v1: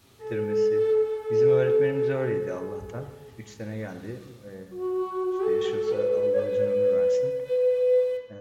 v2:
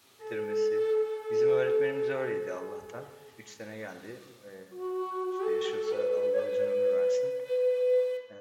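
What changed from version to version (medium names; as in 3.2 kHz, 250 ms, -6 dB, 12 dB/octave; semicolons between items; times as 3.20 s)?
master: add high-pass 650 Hz 6 dB/octave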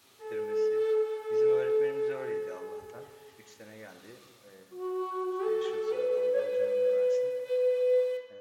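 speech -7.0 dB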